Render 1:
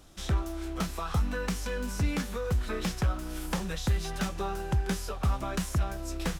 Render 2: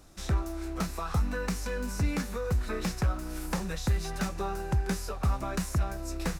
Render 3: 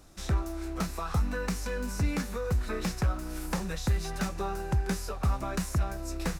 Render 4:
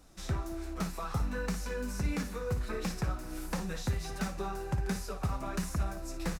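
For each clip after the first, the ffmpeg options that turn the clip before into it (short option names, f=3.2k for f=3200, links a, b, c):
-af "equalizer=f=3.2k:t=o:w=0.3:g=-8.5"
-af anull
-filter_complex "[0:a]flanger=delay=3.7:depth=4.7:regen=-42:speed=1.4:shape=triangular,asplit=2[a][b];[b]aecho=0:1:57|222:0.299|0.112[c];[a][c]amix=inputs=2:normalize=0"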